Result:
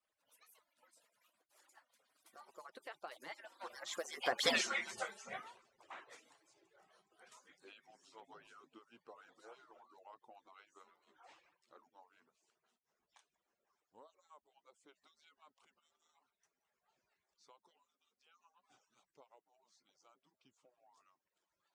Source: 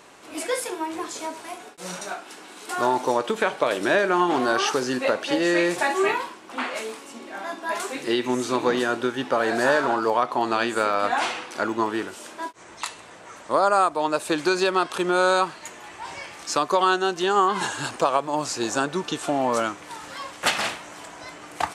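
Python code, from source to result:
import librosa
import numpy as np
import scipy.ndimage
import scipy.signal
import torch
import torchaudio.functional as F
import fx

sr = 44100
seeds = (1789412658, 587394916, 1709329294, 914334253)

y = fx.hpss_only(x, sr, part='percussive')
y = fx.doppler_pass(y, sr, speed_mps=55, closest_m=3.0, pass_at_s=4.54)
y = y * 10.0 ** (4.5 / 20.0)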